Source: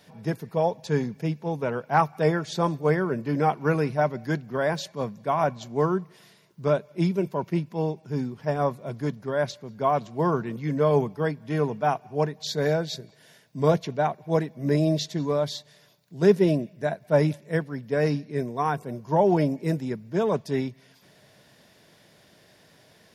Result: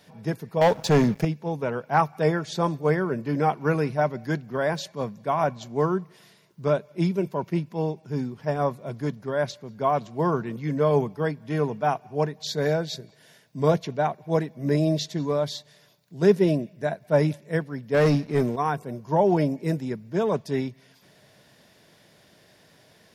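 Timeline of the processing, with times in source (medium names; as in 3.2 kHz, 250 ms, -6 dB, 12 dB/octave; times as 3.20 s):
0.61–1.25 s: waveshaping leveller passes 3
17.94–18.56 s: waveshaping leveller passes 2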